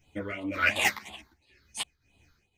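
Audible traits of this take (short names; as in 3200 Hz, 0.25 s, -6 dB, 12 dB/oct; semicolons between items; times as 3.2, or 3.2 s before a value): phasing stages 6, 2.9 Hz, lowest notch 690–1600 Hz; tremolo triangle 1.9 Hz, depth 85%; a shimmering, thickened sound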